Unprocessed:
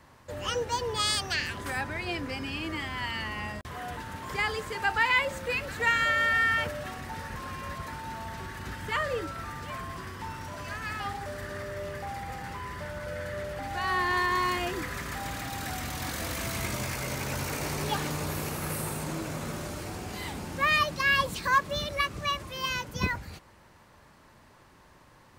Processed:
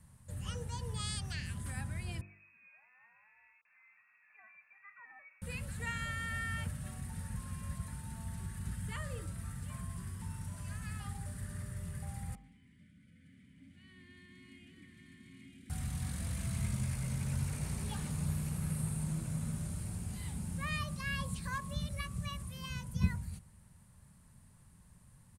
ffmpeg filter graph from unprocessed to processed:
-filter_complex "[0:a]asettb=1/sr,asplit=3[a][b][c];[a]atrim=end=2.214[d];[b]atrim=start=2.21:end=5.42,asetpts=PTS-STARTPTS,afade=t=in:d=0.004:c=qsin,afade=t=out:st=3.206:d=0.004:c=qsin,highpass=260,lowpass=f=2.4k:t=q:w=0.5098,lowpass=f=2.4k:t=q:w=0.6013,lowpass=f=2.4k:t=q:w=0.9,lowpass=f=2.4k:t=q:w=2.563,afreqshift=-2800,aderivative[e];[c]atrim=start=5.416[f];[d][e]acrossfade=d=0.004:c1=hsin:c2=qsin[g];[g][f]acrossfade=d=0.004:c1=qsin:c2=hsin,asettb=1/sr,asplit=3[h][i][j];[h]atrim=end=12.354[k];[i]atrim=start=12.35:end=15.7,asetpts=PTS-STARTPTS,afade=t=in:d=0.004:c=qsin,afade=t=out:st=3.346:d=0.004:c=qsin,asplit=3[l][m][n];[l]bandpass=f=270:t=q:w=8,volume=0dB[o];[m]bandpass=f=2.29k:t=q:w=8,volume=-6dB[p];[n]bandpass=f=3.01k:t=q:w=8,volume=-9dB[q];[o][p][q]amix=inputs=3:normalize=0,aecho=1:1:887:0.631,atrim=end_sample=147735[r];[j]atrim=start=15.696[s];[k][r]acrossfade=d=0.004:c1=hsin:c2=qsin[t];[t][s]acrossfade=d=0.004:c1=qsin:c2=hsin,bandreject=f=49.57:t=h:w=4,bandreject=f=99.14:t=h:w=4,bandreject=f=148.71:t=h:w=4,bandreject=f=198.28:t=h:w=4,bandreject=f=247.85:t=h:w=4,bandreject=f=297.42:t=h:w=4,bandreject=f=346.99:t=h:w=4,bandreject=f=396.56:t=h:w=4,bandreject=f=446.13:t=h:w=4,bandreject=f=495.7:t=h:w=4,bandreject=f=545.27:t=h:w=4,bandreject=f=594.84:t=h:w=4,bandreject=f=644.41:t=h:w=4,bandreject=f=693.98:t=h:w=4,bandreject=f=743.55:t=h:w=4,bandreject=f=793.12:t=h:w=4,bandreject=f=842.69:t=h:w=4,bandreject=f=892.26:t=h:w=4,bandreject=f=941.83:t=h:w=4,bandreject=f=991.4:t=h:w=4,bandreject=f=1.04097k:t=h:w=4,bandreject=f=1.09054k:t=h:w=4,bandreject=f=1.14011k:t=h:w=4,bandreject=f=1.18968k:t=h:w=4,bandreject=f=1.23925k:t=h:w=4,bandreject=f=1.28882k:t=h:w=4,bandreject=f=1.33839k:t=h:w=4,acrossover=split=5800[u][v];[v]acompressor=threshold=-52dB:ratio=4:attack=1:release=60[w];[u][w]amix=inputs=2:normalize=0,firequalizer=gain_entry='entry(190,0);entry(300,-19);entry(5800,-13);entry(9200,6);entry(15000,-13)':delay=0.05:min_phase=1,volume=2dB"

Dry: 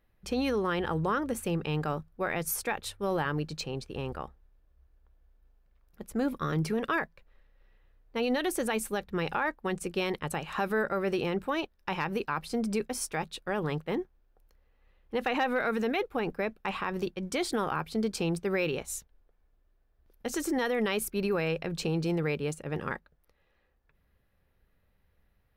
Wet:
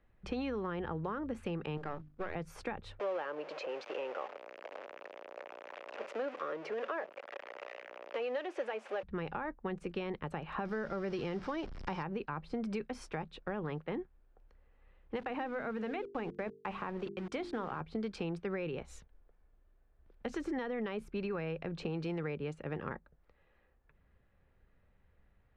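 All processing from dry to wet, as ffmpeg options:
-filter_complex "[0:a]asettb=1/sr,asplit=3[a][b][c];[a]atrim=end=1.774[d];[b]atrim=start=1.77:end=2.35,asetpts=PTS-STARTPTS,afade=t=in:d=0.004:c=qsin,afade=t=out:st=0.576:d=0.004:c=qsin,aeval=exprs='if(lt(val(0),0),0.251*val(0),val(0))':c=same,bandreject=f=50:t=h:w=6,bandreject=f=100:t=h:w=6,bandreject=f=150:t=h:w=6,bandreject=f=200:t=h:w=6,bandreject=f=250:t=h:w=6,bandreject=f=300:t=h:w=6,acrusher=bits=7:mode=log:mix=0:aa=0.000001[e];[c]atrim=start=2.346[f];[d][e]acrossfade=d=0.004:c1=hsin:c2=qsin[g];[g][f]acrossfade=d=0.004:c1=qsin:c2=hsin,asettb=1/sr,asplit=3[h][i][j];[h]atrim=end=2.994[k];[i]atrim=start=2.99:end=9.03,asetpts=PTS-STARTPTS,afade=t=in:d=0.004:c=qsin,afade=t=out:st=6.036:d=0.004:c=qsin,aeval=exprs='val(0)+0.5*0.0237*sgn(val(0))':c=same,highpass=f=430:w=0.5412,highpass=f=430:w=1.3066,equalizer=f=570:t=q:w=4:g=9,equalizer=f=2.6k:t=q:w=4:g=4,equalizer=f=4k:t=q:w=4:g=-4,equalizer=f=8.7k:t=q:w=4:g=-9,lowpass=f=9.5k:w=0.5412,lowpass=f=9.5k:w=1.3066[l];[j]atrim=start=9.026[m];[k][l]acrossfade=d=0.004:c1=hsin:c2=qsin[n];[n][m]acrossfade=d=0.004:c1=qsin:c2=hsin,asettb=1/sr,asplit=3[o][p][q];[o]atrim=end=10.654[r];[p]atrim=start=10.65:end=12.03,asetpts=PTS-STARTPTS,afade=t=in:d=0.004:c=qsin,afade=t=out:st=1.376:d=0.004:c=qsin,aeval=exprs='val(0)+0.5*0.0141*sgn(val(0))':c=same,equalizer=f=5.3k:t=o:w=0.53:g=13.5,bandreject=f=2.6k:w=16[s];[q]atrim=start=12.026[t];[r][s]acrossfade=d=0.004:c1=hsin:c2=qsin[u];[u][t]acrossfade=d=0.004:c1=qsin:c2=hsin,asettb=1/sr,asplit=3[v][w][x];[v]atrim=end=15.164[y];[w]atrim=start=15.16:end=17.81,asetpts=PTS-STARTPTS,afade=t=in:d=0.004:c=qsin,afade=t=out:st=2.646:d=0.004:c=qsin,lowshelf=f=140:g=-7.5,aeval=exprs='val(0)*gte(abs(val(0)),0.00891)':c=same,bandreject=f=50:t=h:w=6,bandreject=f=100:t=h:w=6,bandreject=f=150:t=h:w=6,bandreject=f=200:t=h:w=6,bandreject=f=250:t=h:w=6,bandreject=f=300:t=h:w=6,bandreject=f=350:t=h:w=6,bandreject=f=400:t=h:w=6,bandreject=f=450:t=h:w=6[z];[x]atrim=start=17.806[aa];[y][z]acrossfade=d=0.004:c1=hsin:c2=qsin[ab];[ab][aa]acrossfade=d=0.004:c1=qsin:c2=hsin,lowpass=2.6k,acrossover=split=230|1100[ac][ad][ae];[ac]acompressor=threshold=-45dB:ratio=4[af];[ad]acompressor=threshold=-41dB:ratio=4[ag];[ae]acompressor=threshold=-49dB:ratio=4[ah];[af][ag][ah]amix=inputs=3:normalize=0,volume=1.5dB"

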